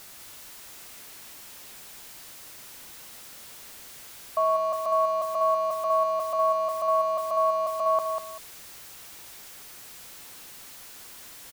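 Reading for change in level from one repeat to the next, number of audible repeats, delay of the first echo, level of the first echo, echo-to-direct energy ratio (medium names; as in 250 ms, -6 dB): -11.5 dB, 2, 195 ms, -6.0 dB, -5.5 dB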